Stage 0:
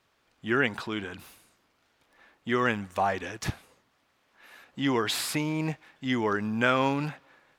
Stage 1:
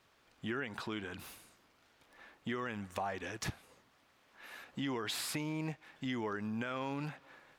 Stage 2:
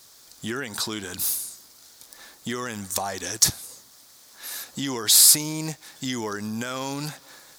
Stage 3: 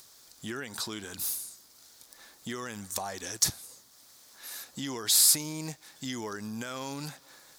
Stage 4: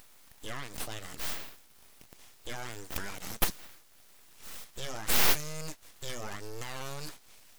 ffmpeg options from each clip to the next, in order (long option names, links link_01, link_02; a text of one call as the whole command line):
ffmpeg -i in.wav -af "alimiter=limit=-17dB:level=0:latency=1:release=57,acompressor=threshold=-41dB:ratio=2.5,volume=1dB" out.wav
ffmpeg -i in.wav -af "aexciter=amount=5.3:drive=8.9:freq=4000,volume=7.5dB" out.wav
ffmpeg -i in.wav -af "acompressor=mode=upward:threshold=-43dB:ratio=2.5,volume=-7dB" out.wav
ffmpeg -i in.wav -af "aeval=exprs='abs(val(0))':channel_layout=same" out.wav